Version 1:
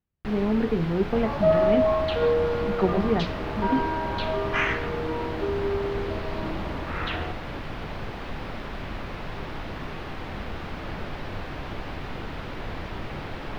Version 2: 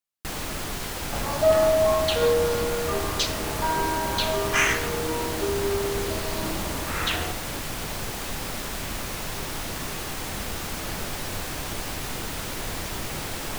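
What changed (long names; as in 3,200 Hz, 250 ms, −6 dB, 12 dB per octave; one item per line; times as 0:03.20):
speech: muted
master: remove high-frequency loss of the air 350 metres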